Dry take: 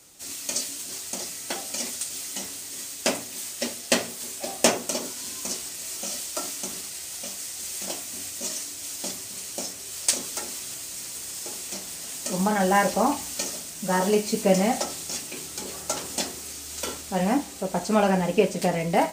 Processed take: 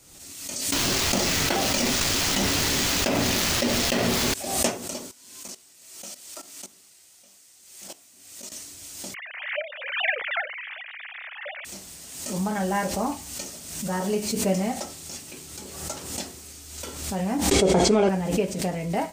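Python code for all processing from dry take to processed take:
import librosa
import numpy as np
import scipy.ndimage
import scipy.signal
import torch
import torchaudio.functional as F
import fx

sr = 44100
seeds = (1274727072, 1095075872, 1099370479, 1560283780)

y = fx.chain(x, sr, fx.median_filter(points=5),
    fx.env_flatten(amount_pct=100), at=(0.72, 4.34))
y = fx.chain(y, sr, fx.highpass(hz=280.0, slope=6),
    fx.level_steps(step_db=16), at=(5.11, 8.52))
y = fx.chain(y, sr, fx.sine_speech(),
    fx.lowpass_res(hz=2000.0, q=3.6),
    fx.tilt_eq(slope=2.5), at=(9.14, 11.65))
y = fx.chain(y, sr, fx.lowpass(hz=6800.0, slope=12),
    fx.small_body(hz=(400.0, 2200.0, 3300.0), ring_ms=25, db=12),
    fx.env_flatten(amount_pct=100), at=(17.51, 18.09))
y = fx.low_shelf(y, sr, hz=150.0, db=11.0)
y = fx.pre_swell(y, sr, db_per_s=55.0)
y = F.gain(torch.from_numpy(y), -6.5).numpy()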